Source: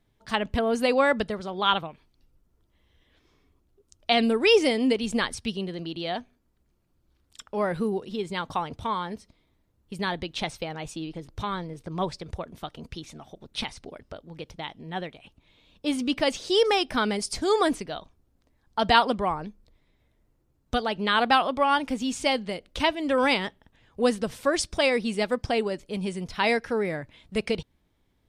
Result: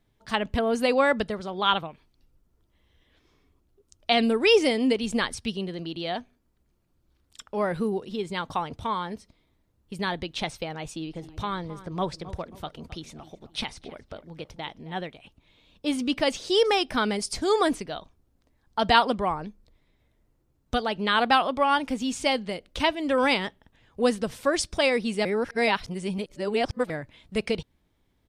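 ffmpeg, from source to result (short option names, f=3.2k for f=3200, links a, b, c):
-filter_complex "[0:a]asplit=3[a][b][c];[a]afade=t=out:st=11.14:d=0.02[d];[b]asplit=2[e][f];[f]adelay=266,lowpass=f=2.1k:p=1,volume=-15dB,asplit=2[g][h];[h]adelay=266,lowpass=f=2.1k:p=1,volume=0.38,asplit=2[i][j];[j]adelay=266,lowpass=f=2.1k:p=1,volume=0.38[k];[e][g][i][k]amix=inputs=4:normalize=0,afade=t=in:st=11.14:d=0.02,afade=t=out:st=15.01:d=0.02[l];[c]afade=t=in:st=15.01:d=0.02[m];[d][l][m]amix=inputs=3:normalize=0,asplit=3[n][o][p];[n]atrim=end=25.252[q];[o]atrim=start=25.248:end=26.902,asetpts=PTS-STARTPTS,areverse[r];[p]atrim=start=26.898[s];[q][r]acrossfade=d=0.004:c1=hsin:c2=hsin[t];[t][s]acrossfade=d=0.004:c1=hsin:c2=hsin"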